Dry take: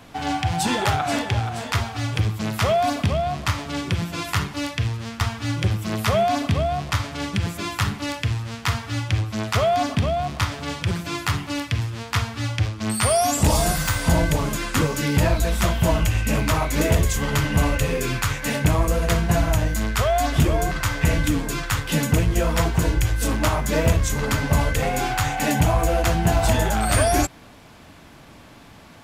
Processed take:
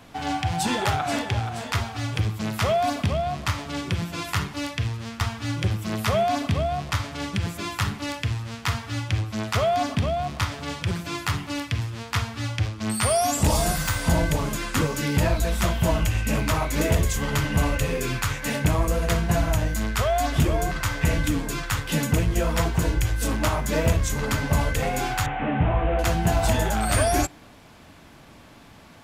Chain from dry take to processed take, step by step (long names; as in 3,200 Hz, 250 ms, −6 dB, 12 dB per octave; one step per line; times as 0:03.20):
0:25.26–0:25.99: linear delta modulator 16 kbit/s, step −31 dBFS
on a send: convolution reverb RT60 0.50 s, pre-delay 3 ms, DRR 23 dB
on the sum: level −2.5 dB